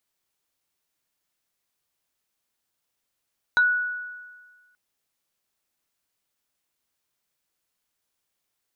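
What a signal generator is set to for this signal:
two-operator FM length 1.18 s, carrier 1,470 Hz, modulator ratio 1.65, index 0.52, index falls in 0.11 s exponential, decay 1.50 s, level −14 dB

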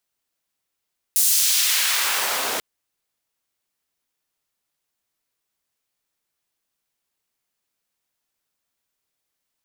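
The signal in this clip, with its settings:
filter sweep on noise pink, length 1.44 s highpass, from 8,600 Hz, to 420 Hz, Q 0.87, exponential, gain ramp −13.5 dB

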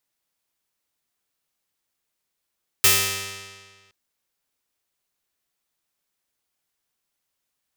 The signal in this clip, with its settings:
Karplus-Strong string G2, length 1.07 s, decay 1.64 s, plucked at 0.35, bright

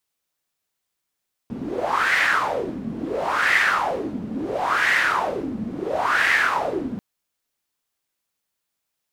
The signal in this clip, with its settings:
wind from filtered noise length 5.49 s, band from 220 Hz, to 1,900 Hz, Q 5.5, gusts 4, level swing 11 dB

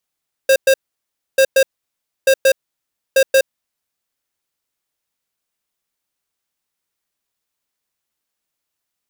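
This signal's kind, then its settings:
beeps in groups square 535 Hz, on 0.07 s, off 0.11 s, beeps 2, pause 0.64 s, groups 4, −10.5 dBFS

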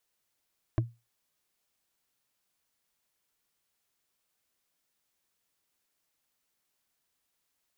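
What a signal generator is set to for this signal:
struck wood, lowest mode 117 Hz, decay 0.25 s, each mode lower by 4 dB, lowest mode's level −20 dB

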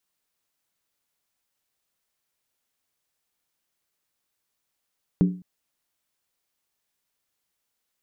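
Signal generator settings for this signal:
struck skin length 0.21 s, lowest mode 181 Hz, decay 0.39 s, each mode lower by 7.5 dB, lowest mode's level −12.5 dB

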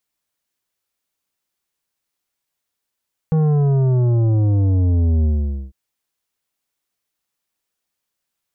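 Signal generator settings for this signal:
bass drop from 160 Hz, over 2.40 s, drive 10 dB, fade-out 0.48 s, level −14 dB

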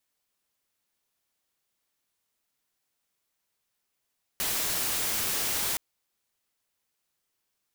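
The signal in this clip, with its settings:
noise white, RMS −29 dBFS 1.37 s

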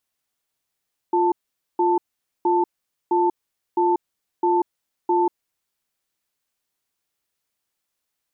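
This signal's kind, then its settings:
tone pair in a cadence 351 Hz, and 885 Hz, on 0.19 s, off 0.47 s, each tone −18.5 dBFS 4.26 s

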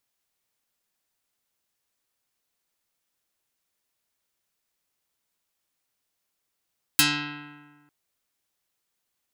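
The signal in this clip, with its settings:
Karplus-Strong string D3, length 0.90 s, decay 1.51 s, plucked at 0.25, dark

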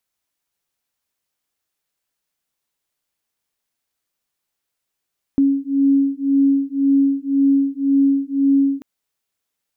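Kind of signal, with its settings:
two tones that beat 275 Hz, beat 1.9 Hz, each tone −16.5 dBFS 3.44 s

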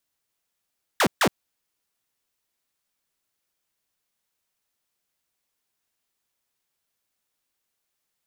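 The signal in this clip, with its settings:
repeated falling chirps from 2,000 Hz, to 140 Hz, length 0.07 s saw, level −14 dB, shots 2, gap 0.14 s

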